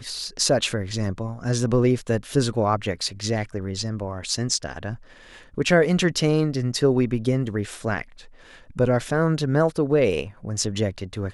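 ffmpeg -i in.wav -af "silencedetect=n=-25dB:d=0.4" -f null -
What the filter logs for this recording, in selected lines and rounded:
silence_start: 4.94
silence_end: 5.58 | silence_duration: 0.64
silence_start: 8.02
silence_end: 8.79 | silence_duration: 0.77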